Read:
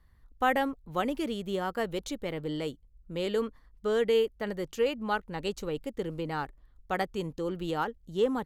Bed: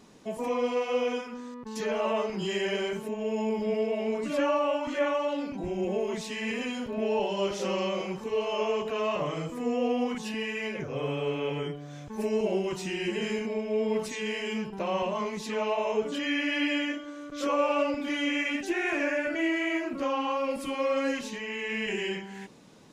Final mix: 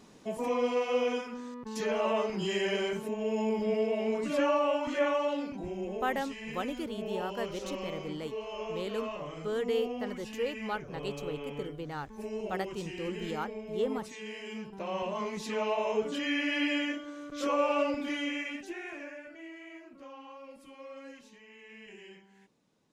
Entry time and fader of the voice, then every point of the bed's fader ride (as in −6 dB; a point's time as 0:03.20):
5.60 s, −5.5 dB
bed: 0:05.28 −1 dB
0:06.12 −9.5 dB
0:14.42 −9.5 dB
0:15.40 −2 dB
0:18.01 −2 dB
0:19.36 −19 dB